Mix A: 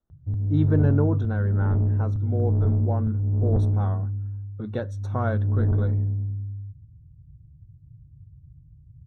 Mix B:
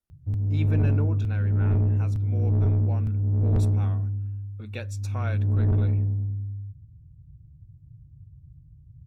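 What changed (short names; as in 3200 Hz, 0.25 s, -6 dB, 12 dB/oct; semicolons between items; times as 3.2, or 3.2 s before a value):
speech -10.0 dB; master: remove running mean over 18 samples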